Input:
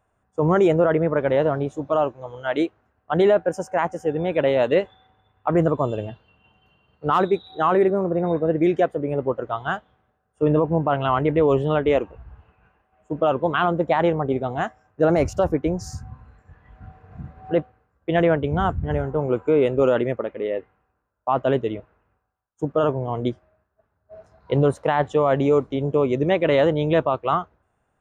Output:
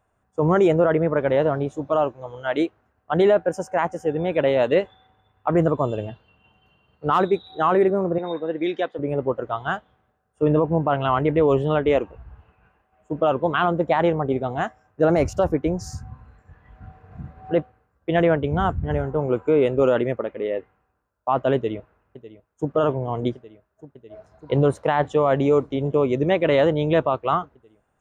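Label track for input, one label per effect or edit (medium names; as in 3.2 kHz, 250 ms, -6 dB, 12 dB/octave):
8.180000	8.990000	cabinet simulation 350–5400 Hz, peaks and dips at 420 Hz -6 dB, 640 Hz -8 dB, 1.3 kHz -3 dB, 3.7 kHz +10 dB
21.550000	22.710000	echo throw 600 ms, feedback 85%, level -16.5 dB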